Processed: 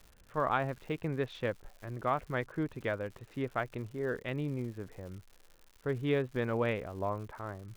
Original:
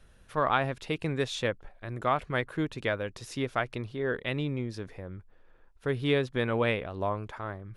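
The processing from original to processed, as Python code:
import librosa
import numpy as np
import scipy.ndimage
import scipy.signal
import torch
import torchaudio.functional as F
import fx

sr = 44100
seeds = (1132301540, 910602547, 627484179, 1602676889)

y = fx.wiener(x, sr, points=9)
y = scipy.signal.sosfilt(scipy.signal.bessel(2, 2200.0, 'lowpass', norm='mag', fs=sr, output='sos'), y)
y = fx.dmg_crackle(y, sr, seeds[0], per_s=180.0, level_db=-42.0)
y = y * 10.0 ** (-3.5 / 20.0)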